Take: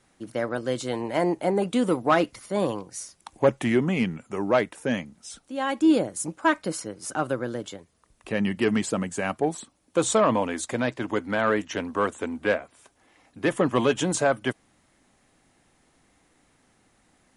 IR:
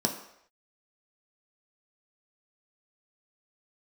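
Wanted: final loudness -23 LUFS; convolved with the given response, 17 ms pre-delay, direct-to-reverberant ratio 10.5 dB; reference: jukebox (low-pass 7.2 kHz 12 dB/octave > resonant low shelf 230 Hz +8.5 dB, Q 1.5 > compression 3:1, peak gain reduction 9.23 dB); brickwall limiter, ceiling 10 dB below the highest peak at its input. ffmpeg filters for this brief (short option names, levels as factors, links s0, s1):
-filter_complex "[0:a]alimiter=limit=0.126:level=0:latency=1,asplit=2[s0][s1];[1:a]atrim=start_sample=2205,adelay=17[s2];[s1][s2]afir=irnorm=-1:irlink=0,volume=0.119[s3];[s0][s3]amix=inputs=2:normalize=0,lowpass=7200,lowshelf=f=230:t=q:w=1.5:g=8.5,acompressor=threshold=0.0708:ratio=3,volume=1.88"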